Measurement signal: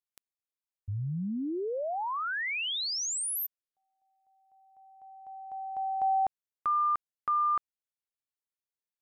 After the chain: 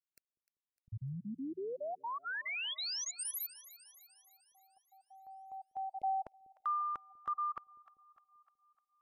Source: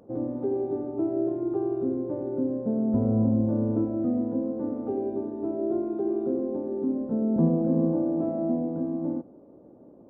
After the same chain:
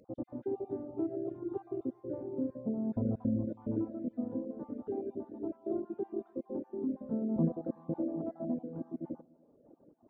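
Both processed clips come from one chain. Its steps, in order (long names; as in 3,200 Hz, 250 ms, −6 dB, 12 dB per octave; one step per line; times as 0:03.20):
time-frequency cells dropped at random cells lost 27%
echo with a time of its own for lows and highs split 570 Hz, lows 195 ms, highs 302 ms, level −15 dB
reverb reduction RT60 1.3 s
level −6 dB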